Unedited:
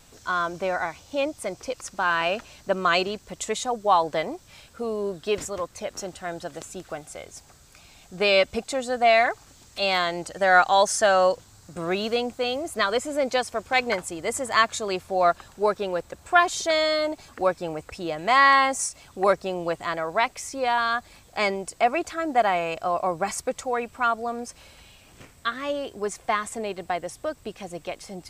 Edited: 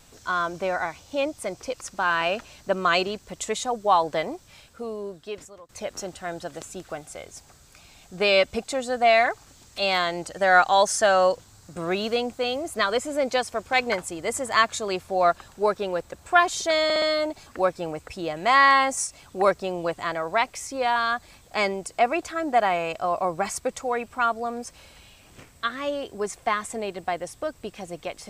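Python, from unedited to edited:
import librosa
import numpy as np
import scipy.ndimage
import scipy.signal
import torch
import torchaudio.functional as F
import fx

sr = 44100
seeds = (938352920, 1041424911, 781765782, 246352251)

y = fx.edit(x, sr, fx.fade_out_to(start_s=4.32, length_s=1.37, floor_db=-21.0),
    fx.stutter(start_s=16.84, slice_s=0.06, count=4), tone=tone)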